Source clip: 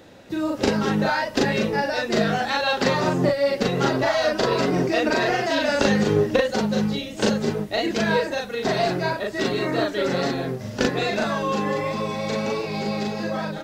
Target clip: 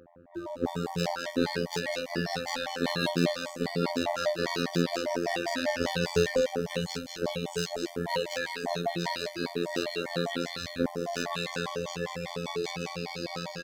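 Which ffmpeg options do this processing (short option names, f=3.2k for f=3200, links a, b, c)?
-filter_complex "[0:a]highshelf=f=2.3k:g=6.5,acrossover=split=160|1600[a][b][c];[c]asoftclip=type=tanh:threshold=-23dB[d];[a][b][d]amix=inputs=3:normalize=0,acrossover=split=1300[e][f];[f]adelay=360[g];[e][g]amix=inputs=2:normalize=0,afftfilt=real='hypot(re,im)*cos(PI*b)':imag='0':win_size=2048:overlap=0.75,asplit=2[h][i];[i]adelay=574,lowpass=f=1.5k:p=1,volume=-22.5dB,asplit=2[j][k];[k]adelay=574,lowpass=f=1.5k:p=1,volume=0.45,asplit=2[l][m];[m]adelay=574,lowpass=f=1.5k:p=1,volume=0.45[n];[j][l][n]amix=inputs=3:normalize=0[o];[h][o]amix=inputs=2:normalize=0,afftfilt=real='re*gt(sin(2*PI*5*pts/sr)*(1-2*mod(floor(b*sr/1024/600),2)),0)':imag='im*gt(sin(2*PI*5*pts/sr)*(1-2*mod(floor(b*sr/1024/600),2)),0)':win_size=1024:overlap=0.75,volume=-1.5dB"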